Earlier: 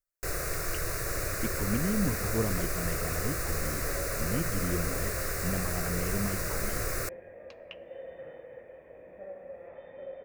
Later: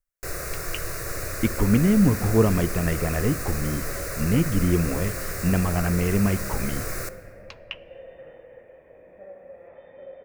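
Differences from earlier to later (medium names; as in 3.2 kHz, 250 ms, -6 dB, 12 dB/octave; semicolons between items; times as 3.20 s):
speech +11.5 dB; first sound: send on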